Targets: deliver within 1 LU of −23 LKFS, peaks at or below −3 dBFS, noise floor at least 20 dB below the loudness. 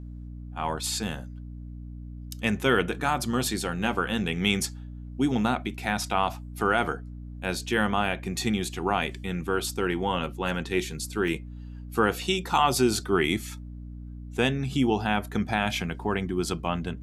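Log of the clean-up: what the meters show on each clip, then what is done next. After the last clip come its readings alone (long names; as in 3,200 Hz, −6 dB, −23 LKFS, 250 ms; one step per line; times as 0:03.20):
number of dropouts 1; longest dropout 1.1 ms; mains hum 60 Hz; hum harmonics up to 300 Hz; level of the hum −37 dBFS; integrated loudness −27.5 LKFS; sample peak −8.5 dBFS; target loudness −23.0 LKFS
→ repair the gap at 0:11.28, 1.1 ms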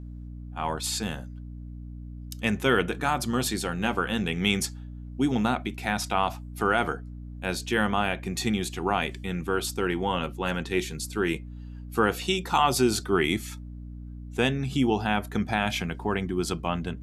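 number of dropouts 0; mains hum 60 Hz; hum harmonics up to 300 Hz; level of the hum −37 dBFS
→ hum removal 60 Hz, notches 5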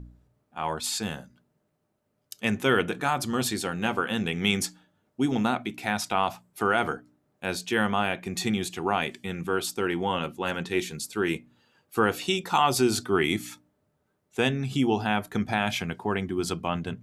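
mains hum none found; integrated loudness −27.5 LKFS; sample peak −9.0 dBFS; target loudness −23.0 LKFS
→ level +4.5 dB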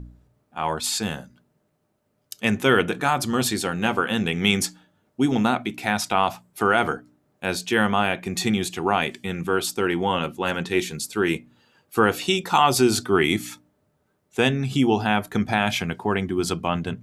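integrated loudness −23.0 LKFS; sample peak −4.5 dBFS; background noise floor −70 dBFS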